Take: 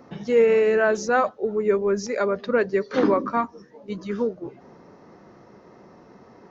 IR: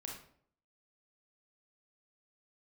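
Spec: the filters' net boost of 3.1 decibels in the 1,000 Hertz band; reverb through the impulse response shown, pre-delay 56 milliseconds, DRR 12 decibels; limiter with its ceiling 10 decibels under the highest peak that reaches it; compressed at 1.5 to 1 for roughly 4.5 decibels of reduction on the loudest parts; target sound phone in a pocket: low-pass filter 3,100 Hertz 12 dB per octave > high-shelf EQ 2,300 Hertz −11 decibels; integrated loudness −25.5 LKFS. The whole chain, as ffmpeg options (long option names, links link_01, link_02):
-filter_complex "[0:a]equalizer=frequency=1000:width_type=o:gain=6.5,acompressor=threshold=-25dB:ratio=1.5,alimiter=limit=-20dB:level=0:latency=1,asplit=2[link_01][link_02];[1:a]atrim=start_sample=2205,adelay=56[link_03];[link_02][link_03]afir=irnorm=-1:irlink=0,volume=-9.5dB[link_04];[link_01][link_04]amix=inputs=2:normalize=0,lowpass=3100,highshelf=frequency=2300:gain=-11,volume=4.5dB"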